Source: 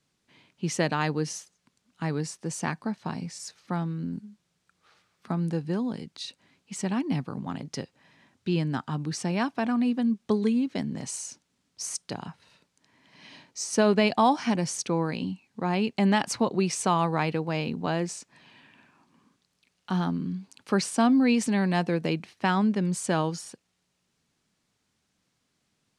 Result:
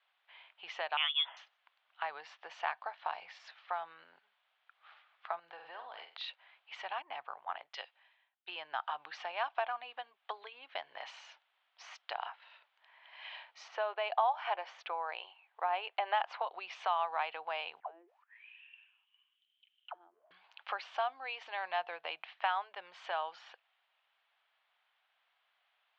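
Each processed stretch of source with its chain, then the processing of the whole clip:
0.97–1.37 HPF 350 Hz 24 dB/oct + inverted band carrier 3800 Hz
5.39–6.28 flutter echo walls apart 8.1 m, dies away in 0.34 s + compressor, threshold -32 dBFS
7.02–8.73 low shelf 96 Hz -10 dB + three-band expander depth 100%
13.68–16.42 brick-wall FIR high-pass 320 Hz + high shelf 2600 Hz -10.5 dB
17.8–20.31 G.711 law mismatch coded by mu + auto-wah 330–3200 Hz, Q 19, down, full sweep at -22.5 dBFS
whole clip: dynamic EQ 1900 Hz, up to -4 dB, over -44 dBFS, Q 1.8; compressor, threshold -29 dBFS; elliptic band-pass 700–3300 Hz, stop band 50 dB; gain +4 dB

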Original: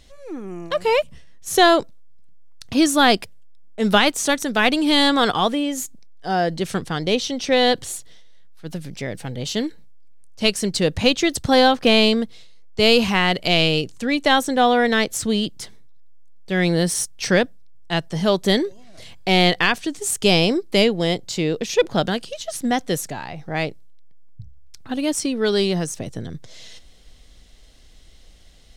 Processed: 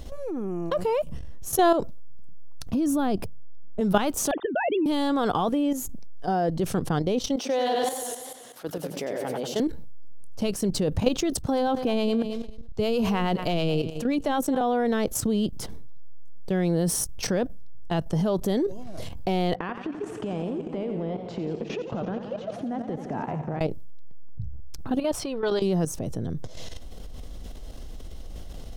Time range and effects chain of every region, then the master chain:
2.73–3.81 low shelf 390 Hz +10.5 dB + compressor 2:1, threshold -26 dBFS
4.31–4.86 sine-wave speech + compressor 3:1, threshold -22 dBFS
7.36–9.6 HPF 410 Hz + feedback echo 92 ms, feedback 25%, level -5 dB + warbling echo 96 ms, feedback 45%, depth 102 cents, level -8 dB
11.32–14.61 harmonic tremolo 9.4 Hz, depth 50%, crossover 520 Hz + feedback echo 0.218 s, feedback 16%, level -19 dB
19.55–23.61 Chebyshev band-pass 140–1900 Hz + compressor 12:1, threshold -32 dBFS + warbling echo 85 ms, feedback 78%, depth 115 cents, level -9 dB
24.99–25.62 EQ curve 140 Hz 0 dB, 240 Hz -11 dB, 660 Hz +4 dB, 4200 Hz +3 dB, 6400 Hz -8 dB + core saturation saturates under 400 Hz
whole clip: level quantiser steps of 13 dB; ten-band EQ 2000 Hz -11 dB, 4000 Hz -9 dB, 8000 Hz -9 dB; fast leveller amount 50%; gain -2.5 dB

